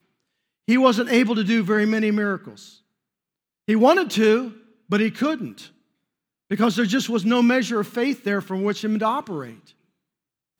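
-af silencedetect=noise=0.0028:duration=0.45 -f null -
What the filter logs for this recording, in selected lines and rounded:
silence_start: 0.00
silence_end: 0.68 | silence_duration: 0.68
silence_start: 2.78
silence_end: 3.68 | silence_duration: 0.90
silence_start: 5.72
silence_end: 6.50 | silence_duration: 0.78
silence_start: 9.72
silence_end: 10.60 | silence_duration: 0.88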